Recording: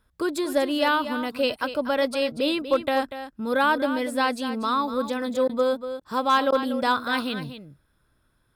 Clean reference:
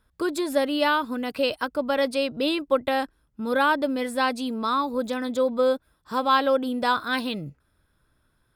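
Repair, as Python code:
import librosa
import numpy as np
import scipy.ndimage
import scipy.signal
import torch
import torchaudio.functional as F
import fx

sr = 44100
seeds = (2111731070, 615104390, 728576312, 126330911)

y = fx.fix_declip(x, sr, threshold_db=-12.0)
y = fx.fix_interpolate(y, sr, at_s=(5.48, 6.0, 6.51), length_ms=11.0)
y = fx.fix_echo_inverse(y, sr, delay_ms=241, level_db=-11.0)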